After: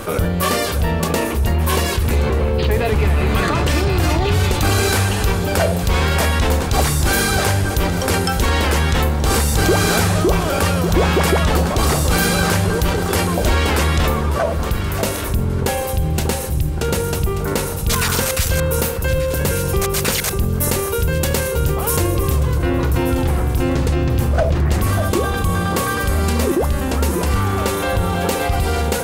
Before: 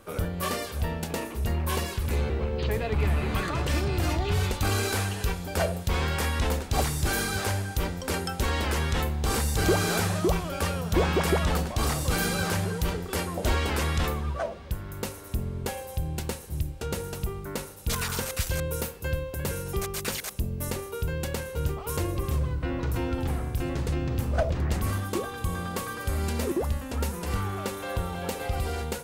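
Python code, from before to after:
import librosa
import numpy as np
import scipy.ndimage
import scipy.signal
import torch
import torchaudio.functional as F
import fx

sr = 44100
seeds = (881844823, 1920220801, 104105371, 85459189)

y = fx.high_shelf(x, sr, hz=6200.0, db=5.5, at=(20.43, 22.69))
y = fx.echo_alternate(y, sr, ms=592, hz=1400.0, feedback_pct=53, wet_db=-9.5)
y = fx.env_flatten(y, sr, amount_pct=50)
y = y * 10.0 ** (6.5 / 20.0)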